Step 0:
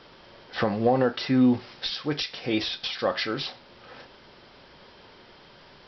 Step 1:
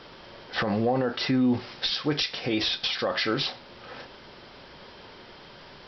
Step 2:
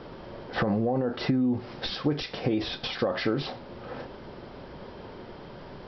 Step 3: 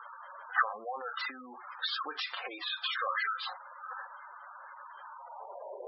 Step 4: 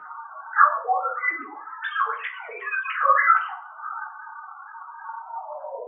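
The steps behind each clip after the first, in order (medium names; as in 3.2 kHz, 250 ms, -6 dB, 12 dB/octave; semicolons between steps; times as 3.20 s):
peak limiter -20 dBFS, peak gain reduction 10 dB; trim +4 dB
tilt shelf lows +8.5 dB, about 1.3 kHz; compression 10:1, threshold -22 dBFS, peak gain reduction 11 dB
high-pass sweep 1.2 kHz -> 530 Hz, 5.05–5.80 s; spectral gate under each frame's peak -10 dB strong
formants replaced by sine waves; reverberation RT60 0.45 s, pre-delay 3 ms, DRR -4 dB; trim -1.5 dB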